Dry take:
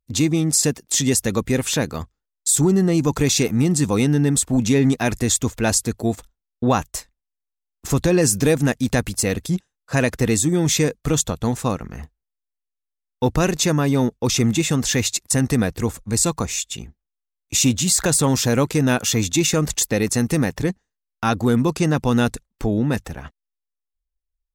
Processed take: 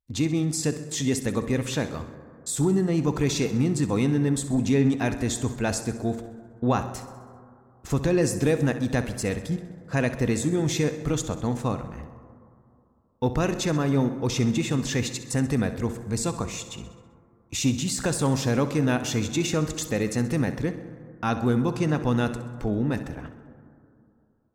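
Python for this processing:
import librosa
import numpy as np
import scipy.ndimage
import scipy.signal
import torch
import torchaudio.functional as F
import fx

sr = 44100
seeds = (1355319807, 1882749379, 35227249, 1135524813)

p1 = fx.high_shelf(x, sr, hz=5500.0, db=-10.5)
p2 = p1 + fx.echo_feedback(p1, sr, ms=65, feedback_pct=58, wet_db=-14.0, dry=0)
p3 = fx.rev_plate(p2, sr, seeds[0], rt60_s=2.6, hf_ratio=0.25, predelay_ms=0, drr_db=12.5)
y = p3 * 10.0 ** (-5.5 / 20.0)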